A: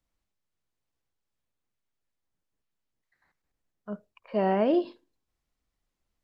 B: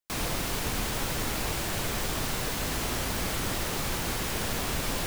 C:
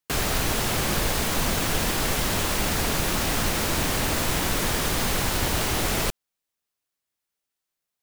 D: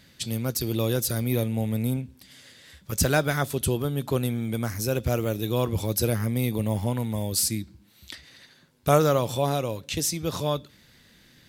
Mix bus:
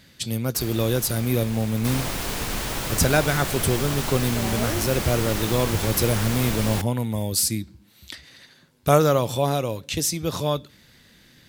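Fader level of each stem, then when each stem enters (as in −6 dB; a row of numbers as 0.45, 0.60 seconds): −8.0, +2.0, −13.0, +2.5 decibels; 0.00, 1.75, 0.45, 0.00 seconds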